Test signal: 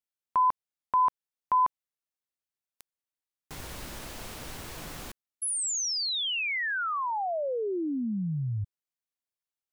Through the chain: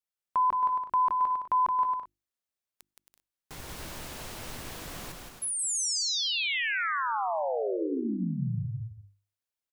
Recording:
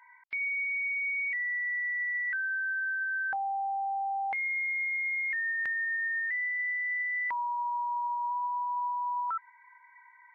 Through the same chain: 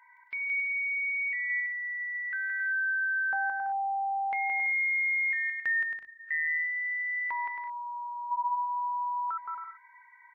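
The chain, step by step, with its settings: notches 50/100/150/200/250/300/350 Hz; on a send: bouncing-ball echo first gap 0.17 s, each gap 0.6×, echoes 5; on the sum: gain -1.5 dB

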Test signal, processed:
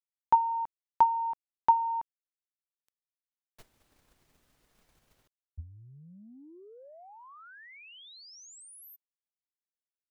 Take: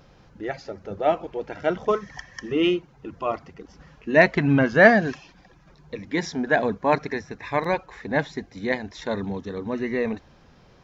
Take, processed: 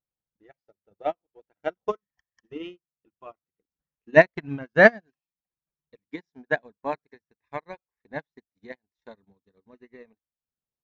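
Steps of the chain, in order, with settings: transient shaper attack +7 dB, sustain -6 dB; upward expander 2.5:1, over -36 dBFS; gain -1.5 dB

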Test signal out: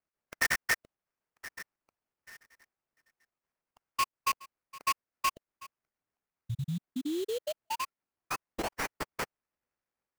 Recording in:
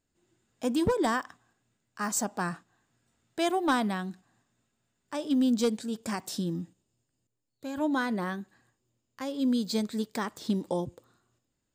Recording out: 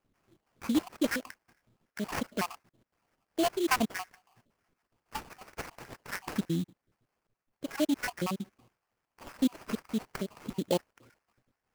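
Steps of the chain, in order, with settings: random spectral dropouts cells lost 75%; in parallel at +1 dB: compressor, threshold -43 dBFS; on the sum: sample-rate reducer 3700 Hz, jitter 20%; gain +1.5 dB

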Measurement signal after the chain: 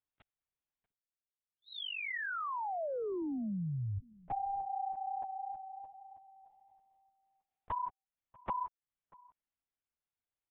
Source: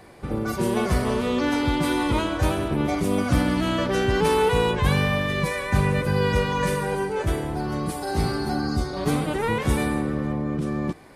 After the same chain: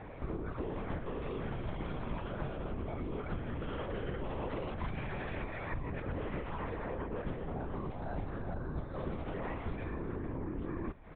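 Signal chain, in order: dynamic EQ 230 Hz, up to -3 dB, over -41 dBFS, Q 4.7; compressor 8:1, threshold -37 dBFS; air absorption 310 m; outdoor echo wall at 110 m, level -23 dB; LPC vocoder at 8 kHz whisper; gain +2 dB

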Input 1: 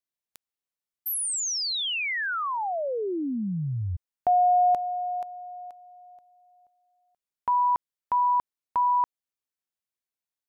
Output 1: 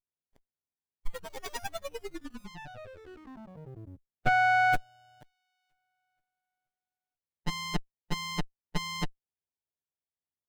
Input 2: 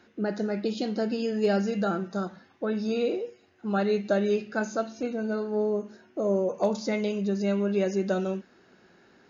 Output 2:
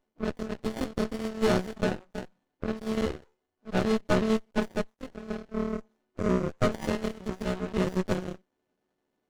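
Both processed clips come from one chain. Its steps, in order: frequency quantiser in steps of 3 st; added harmonics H 6 -24 dB, 7 -16 dB, 8 -25 dB, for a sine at -12 dBFS; running maximum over 33 samples

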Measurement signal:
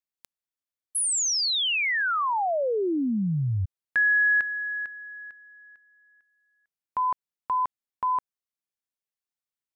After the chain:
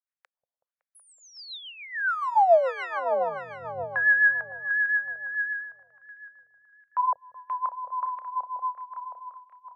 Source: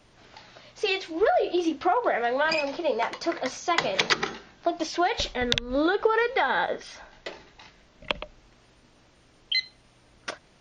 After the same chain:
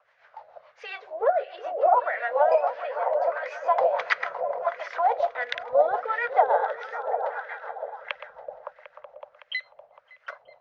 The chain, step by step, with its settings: repeats that get brighter 0.187 s, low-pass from 200 Hz, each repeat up 1 oct, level 0 dB; rotary speaker horn 7 Hz; EQ curve 130 Hz 0 dB, 320 Hz -20 dB, 520 Hz +12 dB, 3200 Hz -2 dB; LFO band-pass sine 1.5 Hz 690–2000 Hz; gain +2 dB

